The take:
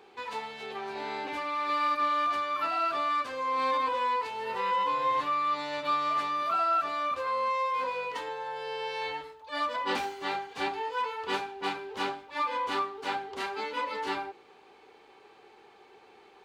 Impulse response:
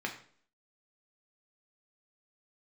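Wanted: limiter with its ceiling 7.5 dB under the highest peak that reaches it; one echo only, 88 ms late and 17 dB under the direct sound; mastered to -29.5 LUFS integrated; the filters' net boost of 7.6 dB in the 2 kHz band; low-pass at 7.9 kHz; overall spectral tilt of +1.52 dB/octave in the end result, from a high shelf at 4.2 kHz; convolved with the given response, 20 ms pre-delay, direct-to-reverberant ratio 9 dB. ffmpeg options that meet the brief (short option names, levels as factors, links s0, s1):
-filter_complex "[0:a]lowpass=7900,equalizer=f=2000:t=o:g=7.5,highshelf=f=4200:g=8,alimiter=limit=0.0841:level=0:latency=1,aecho=1:1:88:0.141,asplit=2[s0][s1];[1:a]atrim=start_sample=2205,adelay=20[s2];[s1][s2]afir=irnorm=-1:irlink=0,volume=0.211[s3];[s0][s3]amix=inputs=2:normalize=0,volume=0.944"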